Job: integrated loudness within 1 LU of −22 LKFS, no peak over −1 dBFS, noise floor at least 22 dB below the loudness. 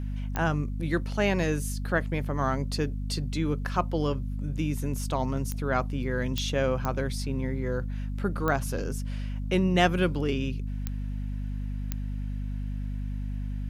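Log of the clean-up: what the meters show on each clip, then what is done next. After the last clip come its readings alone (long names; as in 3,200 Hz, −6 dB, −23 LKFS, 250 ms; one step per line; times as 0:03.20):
number of clicks 7; mains hum 50 Hz; hum harmonics up to 250 Hz; level of the hum −29 dBFS; integrated loudness −29.5 LKFS; sample peak −9.0 dBFS; target loudness −22.0 LKFS
→ click removal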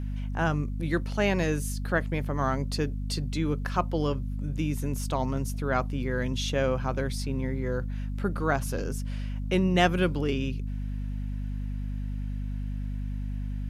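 number of clicks 0; mains hum 50 Hz; hum harmonics up to 250 Hz; level of the hum −29 dBFS
→ mains-hum notches 50/100/150/200/250 Hz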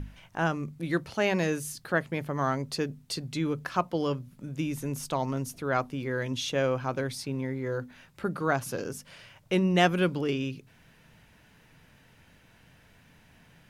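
mains hum none found; integrated loudness −30.0 LKFS; sample peak −9.5 dBFS; target loudness −22.0 LKFS
→ level +8 dB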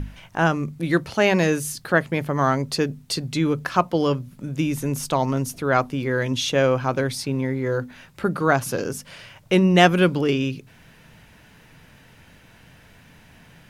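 integrated loudness −22.0 LKFS; sample peak −1.5 dBFS; background noise floor −51 dBFS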